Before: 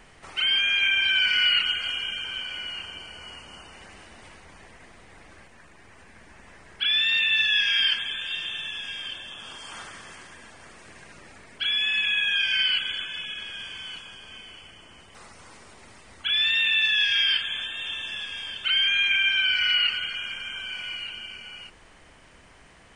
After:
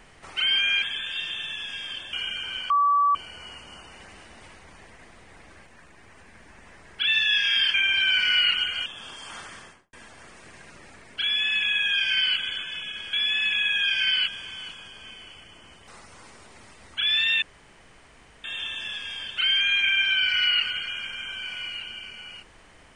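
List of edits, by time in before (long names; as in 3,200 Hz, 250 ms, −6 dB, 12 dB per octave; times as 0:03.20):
0:00.82–0:01.94: swap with 0:07.97–0:09.28
0:02.51–0:02.96: beep over 1,150 Hz −17 dBFS
0:06.88–0:07.30: remove
0:09.99–0:10.35: fade out and dull
0:11.65–0:12.80: duplicate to 0:13.55
0:16.69–0:17.71: fill with room tone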